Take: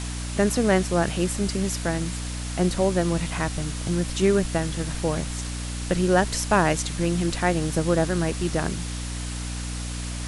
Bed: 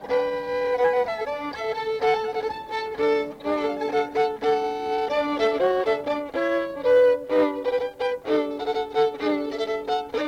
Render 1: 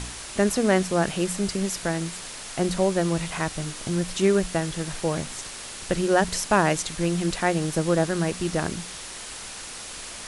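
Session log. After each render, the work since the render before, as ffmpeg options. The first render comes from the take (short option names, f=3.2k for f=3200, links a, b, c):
-af "bandreject=f=60:t=h:w=4,bandreject=f=120:t=h:w=4,bandreject=f=180:t=h:w=4,bandreject=f=240:t=h:w=4,bandreject=f=300:t=h:w=4"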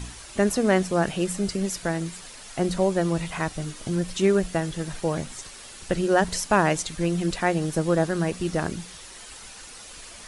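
-af "afftdn=nr=8:nf=-38"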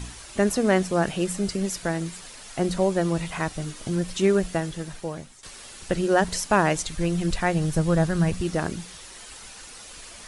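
-filter_complex "[0:a]asettb=1/sr,asplit=3[a][b][c];[a]atrim=end=6.574[d];[b]atrim=start=6.57:end=8.41,asetpts=PTS-STARTPTS,afade=t=in:d=0.004:c=qsin,afade=t=out:st=1.836:d=0.004:c=qsin,asubboost=boost=11:cutoff=130[e];[c]atrim=start=8.406[f];[d][e]acrossfade=d=0.004:c1=hsin:c2=qsin[g];[g][f]acrossfade=d=0.004:c1=qsin:c2=hsin,asplit=2[h][i];[h]atrim=end=5.43,asetpts=PTS-STARTPTS,afade=t=out:st=4.51:d=0.92:silence=0.177828[j];[i]atrim=start=5.43,asetpts=PTS-STARTPTS,afade=t=in:d=0.004:c=hsin:silence=0.177828[k];[j][k]concat=n=2:v=0:a=1"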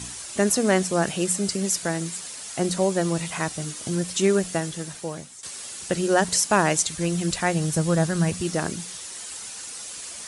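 -af "highpass=97,equalizer=f=8.1k:w=0.7:g=9.5"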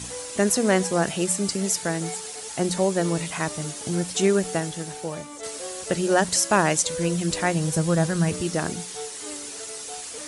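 -filter_complex "[1:a]volume=-16dB[a];[0:a][a]amix=inputs=2:normalize=0"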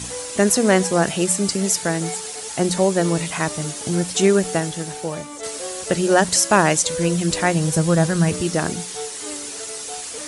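-af "volume=4.5dB,alimiter=limit=-1dB:level=0:latency=1"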